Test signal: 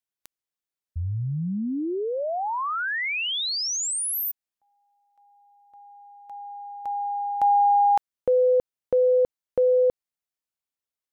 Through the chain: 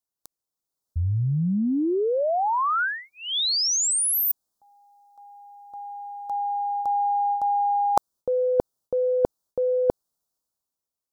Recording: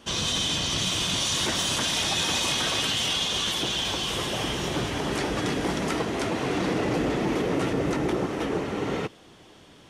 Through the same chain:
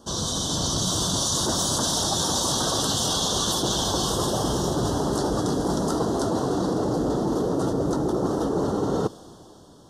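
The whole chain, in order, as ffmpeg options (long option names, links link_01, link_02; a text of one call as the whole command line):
ffmpeg -i in.wav -af "dynaudnorm=framelen=160:gausssize=11:maxgain=9.5dB,asuperstop=centerf=2300:order=4:qfactor=0.76,areverse,acompressor=threshold=-24dB:ratio=16:attack=16:release=173:knee=1:detection=peak,areverse,volume=2.5dB" out.wav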